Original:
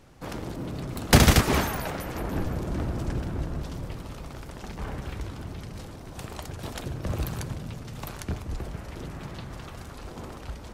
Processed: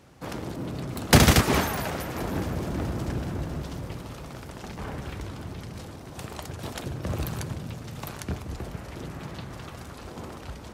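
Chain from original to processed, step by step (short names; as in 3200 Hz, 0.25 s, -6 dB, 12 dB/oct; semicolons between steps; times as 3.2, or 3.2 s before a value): HPF 67 Hz; multi-head echo 0.215 s, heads second and third, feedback 67%, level -23 dB; gain +1 dB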